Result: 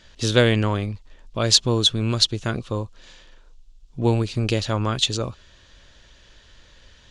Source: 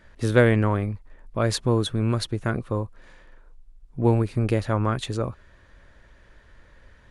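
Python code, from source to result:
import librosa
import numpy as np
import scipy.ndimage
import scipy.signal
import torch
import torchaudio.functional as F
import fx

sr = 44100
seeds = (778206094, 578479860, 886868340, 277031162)

y = fx.band_shelf(x, sr, hz=4500.0, db=14.5, octaves=1.7)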